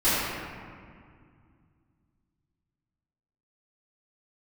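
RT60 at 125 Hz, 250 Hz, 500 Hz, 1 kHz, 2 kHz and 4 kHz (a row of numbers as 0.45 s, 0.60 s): 3.4 s, 3.0 s, 2.2 s, 2.1 s, 1.9 s, 1.2 s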